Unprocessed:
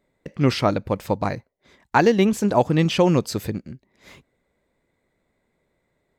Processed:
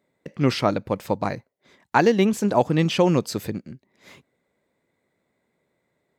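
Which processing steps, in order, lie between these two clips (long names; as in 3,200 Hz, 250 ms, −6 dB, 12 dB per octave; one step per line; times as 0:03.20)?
high-pass filter 110 Hz 12 dB per octave
level −1 dB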